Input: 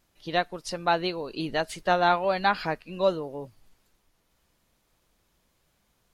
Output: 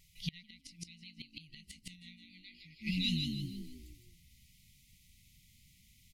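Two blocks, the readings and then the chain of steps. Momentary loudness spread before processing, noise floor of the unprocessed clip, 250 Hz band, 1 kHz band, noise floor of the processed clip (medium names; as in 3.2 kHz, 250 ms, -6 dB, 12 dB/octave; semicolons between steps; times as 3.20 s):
11 LU, -71 dBFS, -6.0 dB, under -40 dB, -66 dBFS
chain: FFT band-reject 190–1900 Hz; frequency-shifting echo 159 ms, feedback 34%, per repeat +54 Hz, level -4.5 dB; inverted gate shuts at -28 dBFS, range -27 dB; trim +6 dB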